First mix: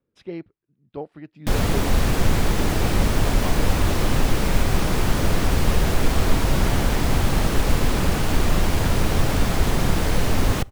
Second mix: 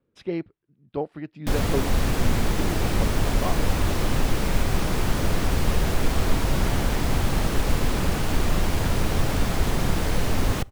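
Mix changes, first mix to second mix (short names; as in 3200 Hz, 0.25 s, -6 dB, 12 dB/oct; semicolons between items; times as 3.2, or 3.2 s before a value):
speech +4.5 dB; background -3.0 dB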